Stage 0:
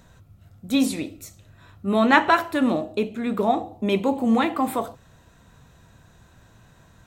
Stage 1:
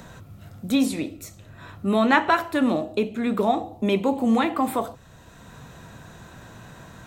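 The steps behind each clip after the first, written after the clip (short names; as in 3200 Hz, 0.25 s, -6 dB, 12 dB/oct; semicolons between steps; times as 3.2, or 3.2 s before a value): three-band squash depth 40%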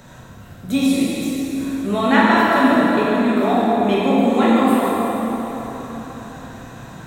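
plate-style reverb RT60 4.3 s, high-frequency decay 0.7×, DRR -8 dB; gain -2 dB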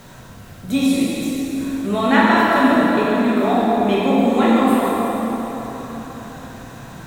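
added noise pink -48 dBFS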